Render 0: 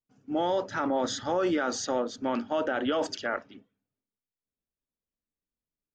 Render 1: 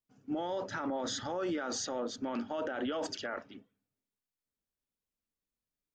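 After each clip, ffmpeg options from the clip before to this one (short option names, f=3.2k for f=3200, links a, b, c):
-af "alimiter=level_in=2.5dB:limit=-24dB:level=0:latency=1:release=23,volume=-2.5dB,volume=-1dB"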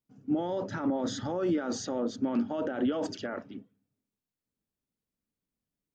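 -af "equalizer=f=170:w=0.38:g=12.5,volume=-2.5dB"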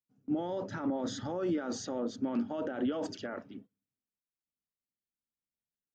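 -af "agate=range=-11dB:threshold=-48dB:ratio=16:detection=peak,volume=-3.5dB"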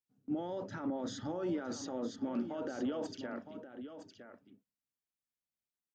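-af "aecho=1:1:962:0.299,volume=-4dB"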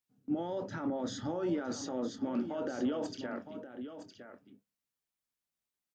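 -filter_complex "[0:a]asplit=2[a][b];[b]adelay=24,volume=-12.5dB[c];[a][c]amix=inputs=2:normalize=0,volume=2.5dB"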